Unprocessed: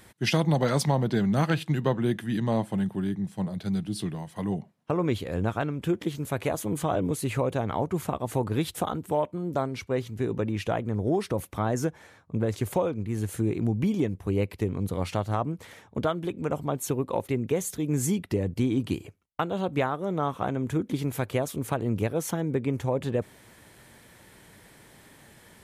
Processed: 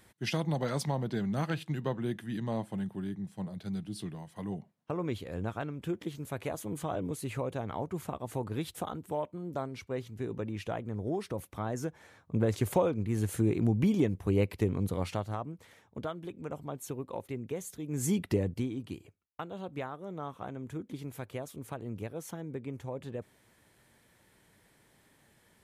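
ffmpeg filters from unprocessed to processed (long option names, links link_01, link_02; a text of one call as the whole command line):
ffmpeg -i in.wav -af "volume=9.5dB,afade=type=in:start_time=11.86:duration=0.54:silence=0.446684,afade=type=out:start_time=14.72:duration=0.72:silence=0.334965,afade=type=in:start_time=17.9:duration=0.35:silence=0.298538,afade=type=out:start_time=18.25:duration=0.48:silence=0.251189" out.wav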